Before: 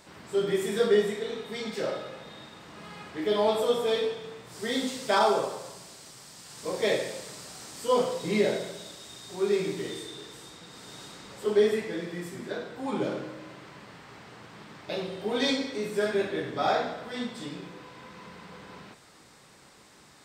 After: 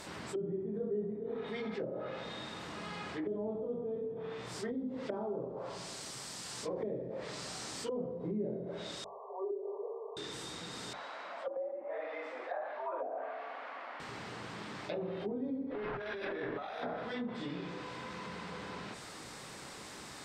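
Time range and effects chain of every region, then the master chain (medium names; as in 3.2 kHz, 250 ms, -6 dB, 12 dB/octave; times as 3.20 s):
9.04–10.17 s: brick-wall FIR band-pass 390–1200 Hz + peaking EQ 660 Hz +3 dB 0.26 oct
10.93–14.00 s: low-pass 2 kHz + resonant low shelf 360 Hz -13.5 dB, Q 1.5 + frequency shift +130 Hz
15.71–16.83 s: RIAA curve recording + compressor with a negative ratio -37 dBFS + decimation joined by straight lines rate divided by 6×
whole clip: hum notches 50/100/150/200 Hz; low-pass that closes with the level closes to 310 Hz, closed at -26 dBFS; level flattener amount 50%; trim -8.5 dB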